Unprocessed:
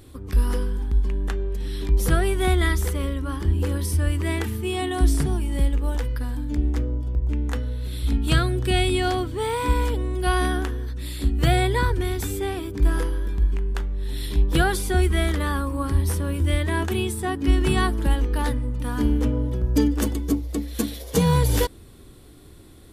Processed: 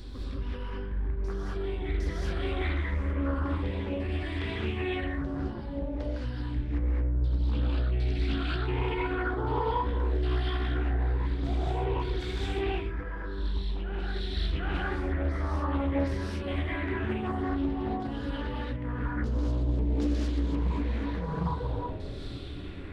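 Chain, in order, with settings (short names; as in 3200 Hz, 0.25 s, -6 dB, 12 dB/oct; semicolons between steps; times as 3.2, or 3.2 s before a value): low shelf 140 Hz +3.5 dB; de-hum 105.1 Hz, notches 33; reverse; compressor 6:1, threshold -30 dBFS, peak gain reduction 18.5 dB; reverse; limiter -30 dBFS, peak gain reduction 10 dB; LFO low-pass saw down 0.5 Hz 610–4800 Hz; on a send: reverse echo 0.759 s -7.5 dB; on the sum: non-linear reverb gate 0.25 s rising, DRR -5.5 dB; Doppler distortion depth 0.43 ms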